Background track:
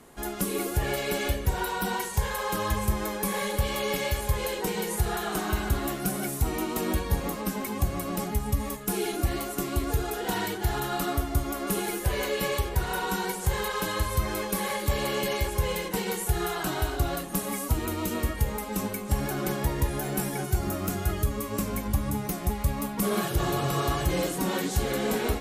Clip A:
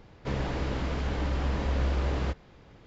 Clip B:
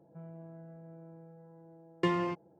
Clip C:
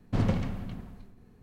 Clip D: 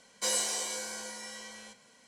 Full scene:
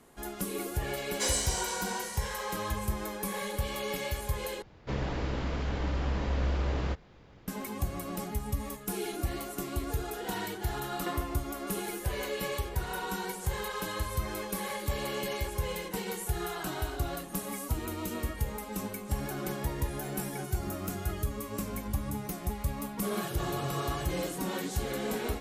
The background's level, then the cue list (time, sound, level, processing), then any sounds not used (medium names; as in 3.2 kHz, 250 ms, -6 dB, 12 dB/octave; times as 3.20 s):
background track -6 dB
0.98 s: add D -0.5 dB
4.62 s: replace with A -2 dB
9.03 s: add B -6.5 dB + high-pass 290 Hz
not used: C